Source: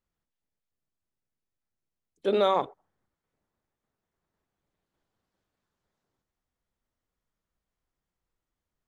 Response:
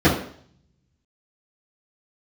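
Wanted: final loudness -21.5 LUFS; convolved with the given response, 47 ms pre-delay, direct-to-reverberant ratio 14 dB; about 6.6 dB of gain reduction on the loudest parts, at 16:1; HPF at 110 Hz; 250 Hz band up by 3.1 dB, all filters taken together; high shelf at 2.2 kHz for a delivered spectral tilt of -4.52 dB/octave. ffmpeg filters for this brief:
-filter_complex "[0:a]highpass=110,equalizer=f=250:t=o:g=5,highshelf=f=2200:g=-3.5,acompressor=threshold=0.0562:ratio=16,asplit=2[s0][s1];[1:a]atrim=start_sample=2205,adelay=47[s2];[s1][s2]afir=irnorm=-1:irlink=0,volume=0.0158[s3];[s0][s3]amix=inputs=2:normalize=0,volume=3.55"

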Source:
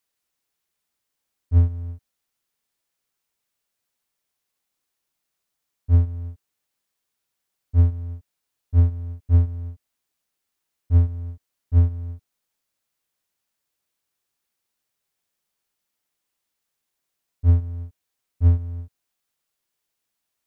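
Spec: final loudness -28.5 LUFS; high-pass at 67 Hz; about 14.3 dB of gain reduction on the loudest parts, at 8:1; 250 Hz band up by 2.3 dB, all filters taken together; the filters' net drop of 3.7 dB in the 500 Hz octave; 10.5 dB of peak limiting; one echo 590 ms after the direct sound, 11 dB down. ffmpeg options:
-af "highpass=67,equalizer=f=250:t=o:g=3.5,equalizer=f=500:t=o:g=-5.5,acompressor=threshold=0.0398:ratio=8,alimiter=level_in=3.16:limit=0.0631:level=0:latency=1,volume=0.316,aecho=1:1:590:0.282,volume=5.31"

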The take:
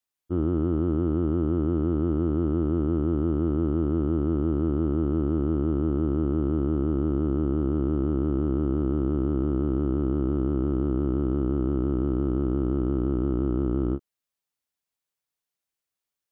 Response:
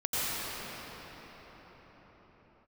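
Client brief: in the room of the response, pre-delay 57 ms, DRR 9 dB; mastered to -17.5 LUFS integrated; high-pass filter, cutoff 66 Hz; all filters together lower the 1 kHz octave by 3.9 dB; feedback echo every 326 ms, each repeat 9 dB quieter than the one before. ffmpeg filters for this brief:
-filter_complex "[0:a]highpass=66,equalizer=f=1000:t=o:g=-5.5,aecho=1:1:326|652|978|1304:0.355|0.124|0.0435|0.0152,asplit=2[s0][s1];[1:a]atrim=start_sample=2205,adelay=57[s2];[s1][s2]afir=irnorm=-1:irlink=0,volume=0.0944[s3];[s0][s3]amix=inputs=2:normalize=0,volume=2.37"

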